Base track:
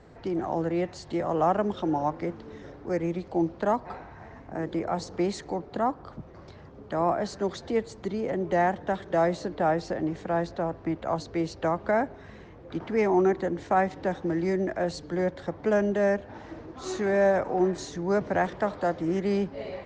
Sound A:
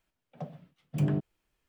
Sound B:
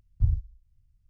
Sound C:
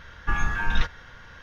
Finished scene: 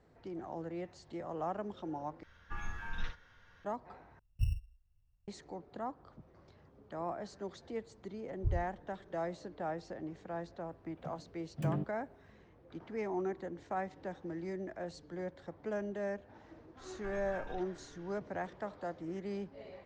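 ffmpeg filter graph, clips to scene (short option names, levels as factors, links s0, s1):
-filter_complex "[3:a]asplit=2[s0][s1];[2:a]asplit=2[s2][s3];[0:a]volume=0.2[s4];[s0]aecho=1:1:11|57:0.447|0.501[s5];[s2]acrusher=samples=16:mix=1:aa=0.000001[s6];[s1]acompressor=threshold=0.0447:ratio=6:attack=3.2:release=140:knee=1:detection=peak[s7];[s4]asplit=3[s8][s9][s10];[s8]atrim=end=2.234[s11];[s5]atrim=end=1.42,asetpts=PTS-STARTPTS,volume=0.133[s12];[s9]atrim=start=3.646:end=4.194[s13];[s6]atrim=end=1.09,asetpts=PTS-STARTPTS,volume=0.355[s14];[s10]atrim=start=5.276[s15];[s3]atrim=end=1.09,asetpts=PTS-STARTPTS,volume=0.316,afade=t=in:d=0.004:c=hsin,afade=t=out:st=1.086:d=0.004:c=hsin,adelay=8230[s16];[1:a]atrim=end=1.68,asetpts=PTS-STARTPTS,volume=0.447,afade=t=in:d=0.004:c=hsin,afade=t=out:st=1.676:d=0.004:c=hsin,adelay=10640[s17];[s7]atrim=end=1.42,asetpts=PTS-STARTPTS,volume=0.178,afade=t=in:d=0.004:c=hsin,afade=t=out:st=1.416:d=0.004:c=hsin,adelay=16770[s18];[s11][s12]acrossfade=d=0.004:c1=hsin:c2=hsin[s19];[s19][s13]acrossfade=d=0.004:c1=hsin:c2=hsin[s20];[s20][s14]acrossfade=d=0.004:c1=hsin:c2=hsin[s21];[s21][s15]acrossfade=d=0.004:c1=hsin:c2=hsin[s22];[s22][s16][s17][s18]amix=inputs=4:normalize=0"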